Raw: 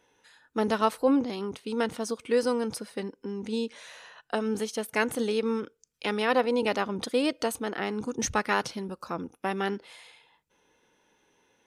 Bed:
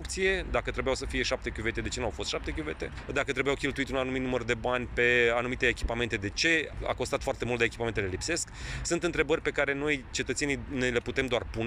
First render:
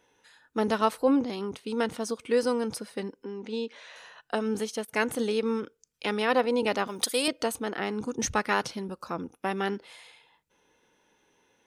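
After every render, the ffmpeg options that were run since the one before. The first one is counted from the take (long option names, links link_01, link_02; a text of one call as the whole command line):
ffmpeg -i in.wav -filter_complex "[0:a]asettb=1/sr,asplit=3[link_01][link_02][link_03];[link_01]atrim=end=3.244[link_04];[link_02]atrim=start=3.24:end=3.96,asetpts=PTS-STARTPTS,afade=type=in:duration=0.004:curve=qsin,afade=type=out:start_time=0.716:duration=0.004:curve=qsin,highpass=260,lowpass=4500[link_05];[link_03]atrim=start=3.956[link_06];[link_04][link_05]acrossfade=duration=0.004:curve1=hsin:curve2=qsin[link_07];[link_07][link_06]acrossfade=duration=0.004:curve1=qsin:curve2=hsin,asettb=1/sr,asplit=3[link_08][link_09][link_10];[link_08]atrim=end=6.874[link_11];[link_09]atrim=start=6.87:end=7.28,asetpts=PTS-STARTPTS,afade=type=in:duration=0.004:curve=qsin,afade=type=out:start_time=0.406:duration=0.004:curve=qsin,aemphasis=mode=production:type=riaa[link_12];[link_10]atrim=start=7.276[link_13];[link_11][link_12]acrossfade=duration=0.004:curve1=hsin:curve2=qsin[link_14];[link_14][link_13]acrossfade=duration=0.004:curve1=qsin:curve2=hsin,asplit=3[link_15][link_16][link_17];[link_15]atrim=end=4.85,asetpts=PTS-STARTPTS,afade=type=out:start_time=4.55:duration=0.3:curve=log:silence=0.211349[link_18];[link_16]atrim=start=4.85:end=4.88,asetpts=PTS-STARTPTS,volume=-13.5dB[link_19];[link_17]atrim=start=4.88,asetpts=PTS-STARTPTS,afade=type=in:duration=0.3:curve=log:silence=0.211349[link_20];[link_18][link_19][link_20]concat=n=3:v=0:a=1" out.wav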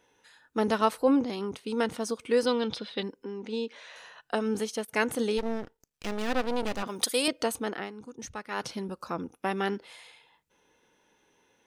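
ffmpeg -i in.wav -filter_complex "[0:a]asettb=1/sr,asplit=3[link_01][link_02][link_03];[link_01]atrim=end=2.464[link_04];[link_02]atrim=start=2.46:end=3.03,asetpts=PTS-STARTPTS,afade=type=in:duration=0.004:curve=qsin,afade=type=out:start_time=0.566:duration=0.004:curve=qsin,lowpass=frequency=3600:width_type=q:width=7.5[link_05];[link_03]atrim=start=3.026[link_06];[link_04][link_05]acrossfade=duration=0.004:curve1=hsin:curve2=qsin[link_07];[link_07][link_06]acrossfade=duration=0.004:curve1=qsin:curve2=hsin,asplit=3[link_08][link_09][link_10];[link_08]afade=type=out:start_time=5.37:duration=0.02[link_11];[link_09]aeval=exprs='max(val(0),0)':channel_layout=same,afade=type=in:start_time=5.37:duration=0.02,afade=type=out:start_time=6.82:duration=0.02[link_12];[link_10]afade=type=in:start_time=6.82:duration=0.02[link_13];[link_11][link_12][link_13]amix=inputs=3:normalize=0,asplit=3[link_14][link_15][link_16];[link_14]atrim=end=7.92,asetpts=PTS-STARTPTS,afade=type=out:start_time=7.69:duration=0.23:silence=0.251189[link_17];[link_15]atrim=start=7.92:end=8.5,asetpts=PTS-STARTPTS,volume=-12dB[link_18];[link_16]atrim=start=8.5,asetpts=PTS-STARTPTS,afade=type=in:duration=0.23:silence=0.251189[link_19];[link_17][link_18][link_19]concat=n=3:v=0:a=1" out.wav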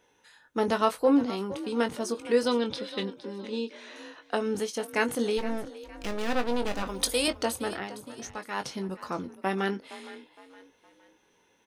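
ffmpeg -i in.wav -filter_complex "[0:a]asplit=2[link_01][link_02];[link_02]adelay=21,volume=-9dB[link_03];[link_01][link_03]amix=inputs=2:normalize=0,asplit=4[link_04][link_05][link_06][link_07];[link_05]adelay=464,afreqshift=39,volume=-16dB[link_08];[link_06]adelay=928,afreqshift=78,volume=-24.2dB[link_09];[link_07]adelay=1392,afreqshift=117,volume=-32.4dB[link_10];[link_04][link_08][link_09][link_10]amix=inputs=4:normalize=0" out.wav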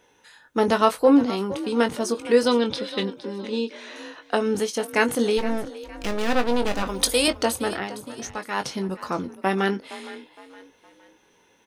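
ffmpeg -i in.wav -af "volume=6dB" out.wav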